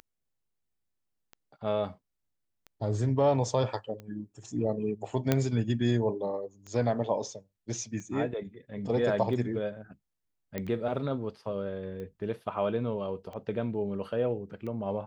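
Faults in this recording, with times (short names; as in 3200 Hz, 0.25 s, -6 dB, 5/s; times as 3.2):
tick 45 rpm -30 dBFS
5.32 pop -10 dBFS
10.58 pop -19 dBFS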